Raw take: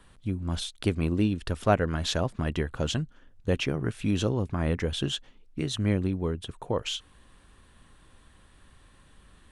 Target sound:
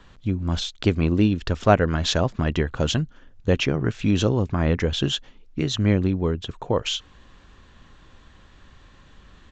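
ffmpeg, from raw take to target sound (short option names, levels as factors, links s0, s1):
-af "aresample=16000,aresample=44100,volume=2"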